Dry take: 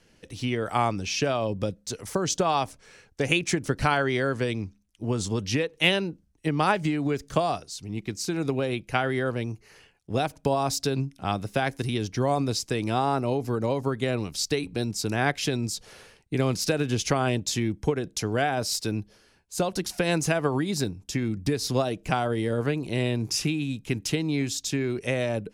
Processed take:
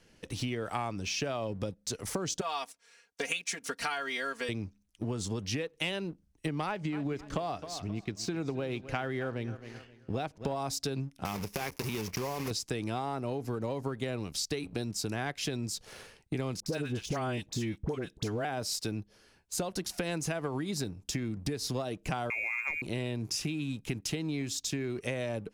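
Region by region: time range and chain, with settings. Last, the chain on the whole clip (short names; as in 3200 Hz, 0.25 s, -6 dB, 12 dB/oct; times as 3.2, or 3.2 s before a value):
2.41–4.49 gate -45 dBFS, range -7 dB + HPF 1400 Hz 6 dB/oct + comb 4.3 ms, depth 90%
6.66–10.56 air absorption 72 m + feedback echo 0.264 s, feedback 33%, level -17.5 dB
11.25–12.51 block floating point 3-bit + ripple EQ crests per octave 0.82, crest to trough 7 dB + compressor 3:1, threshold -27 dBFS
16.6–18.45 dispersion highs, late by 62 ms, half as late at 970 Hz + de-esser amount 70%
22.3–22.82 inverted band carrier 2600 Hz + bell 160 Hz -12 dB 0.39 oct
whole clip: sample leveller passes 1; compressor 4:1, threshold -33 dBFS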